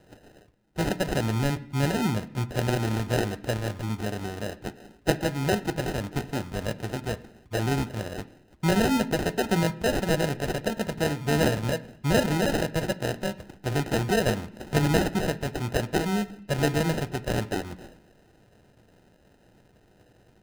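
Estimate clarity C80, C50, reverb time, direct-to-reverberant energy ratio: 20.5 dB, 18.0 dB, 0.70 s, 10.5 dB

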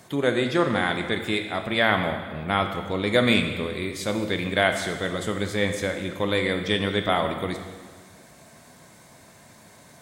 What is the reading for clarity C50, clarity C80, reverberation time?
7.0 dB, 8.5 dB, 1.6 s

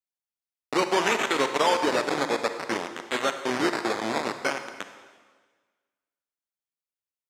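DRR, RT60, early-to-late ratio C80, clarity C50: 8.0 dB, 1.5 s, 10.5 dB, 9.0 dB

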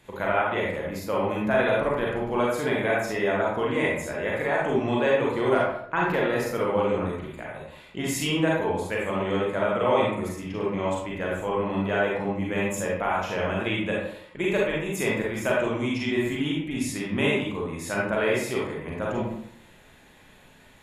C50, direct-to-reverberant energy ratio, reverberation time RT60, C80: 0.0 dB, −4.5 dB, 0.65 s, 4.5 dB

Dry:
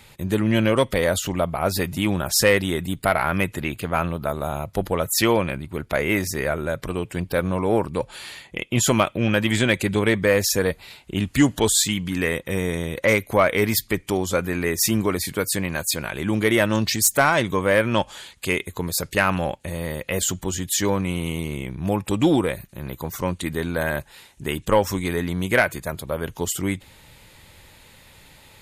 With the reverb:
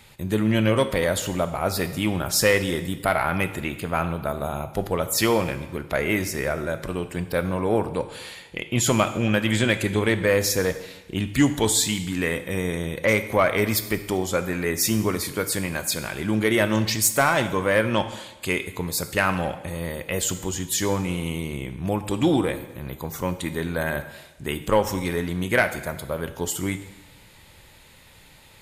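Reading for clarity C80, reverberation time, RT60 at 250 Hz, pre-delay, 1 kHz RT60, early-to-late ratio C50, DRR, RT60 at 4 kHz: 13.5 dB, 1.1 s, 1.1 s, 7 ms, 1.1 s, 12.0 dB, 9.5 dB, 1.0 s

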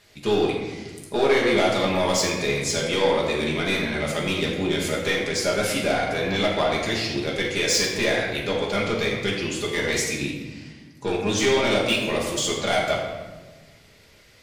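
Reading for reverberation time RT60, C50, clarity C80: 1.3 s, 2.5 dB, 4.0 dB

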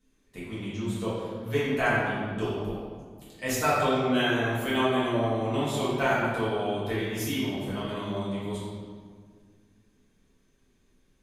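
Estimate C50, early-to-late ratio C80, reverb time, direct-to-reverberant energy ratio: −2.0 dB, 0.5 dB, 1.8 s, −11.0 dB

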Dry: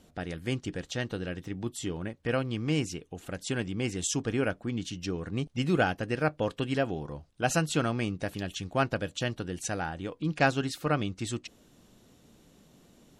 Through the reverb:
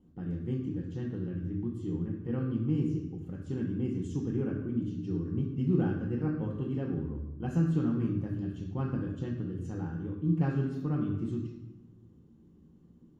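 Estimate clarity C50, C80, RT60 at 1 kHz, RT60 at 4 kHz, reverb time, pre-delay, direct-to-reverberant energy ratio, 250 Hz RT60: 3.5 dB, 6.5 dB, 0.95 s, 0.80 s, 1.1 s, 3 ms, 0.5 dB, 1.4 s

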